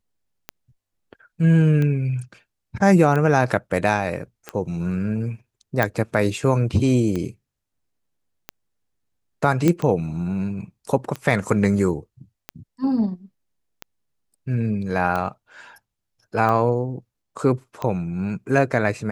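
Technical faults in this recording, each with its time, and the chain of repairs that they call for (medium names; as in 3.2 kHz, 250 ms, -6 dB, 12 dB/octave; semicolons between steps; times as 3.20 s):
tick 45 rpm -14 dBFS
5.83 s: pop -7 dBFS
9.68 s: pop -6 dBFS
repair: de-click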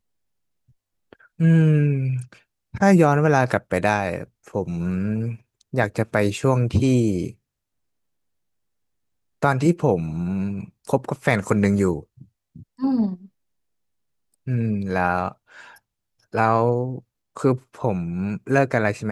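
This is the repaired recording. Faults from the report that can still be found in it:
nothing left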